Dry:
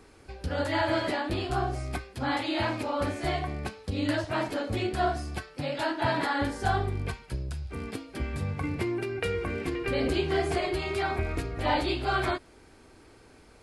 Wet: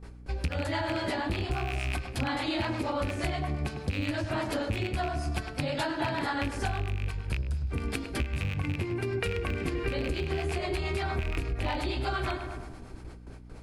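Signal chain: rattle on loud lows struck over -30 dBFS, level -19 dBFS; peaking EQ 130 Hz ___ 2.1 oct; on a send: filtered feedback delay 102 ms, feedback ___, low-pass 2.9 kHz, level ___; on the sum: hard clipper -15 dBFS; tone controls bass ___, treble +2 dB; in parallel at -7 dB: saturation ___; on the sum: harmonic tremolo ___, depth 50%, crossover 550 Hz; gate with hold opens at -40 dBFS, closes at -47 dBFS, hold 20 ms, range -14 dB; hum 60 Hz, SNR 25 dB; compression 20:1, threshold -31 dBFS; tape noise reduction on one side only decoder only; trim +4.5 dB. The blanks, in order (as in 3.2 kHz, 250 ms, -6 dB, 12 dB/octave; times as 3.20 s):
-7.5 dB, 55%, -12 dB, +11 dB, -22.5 dBFS, 8.5 Hz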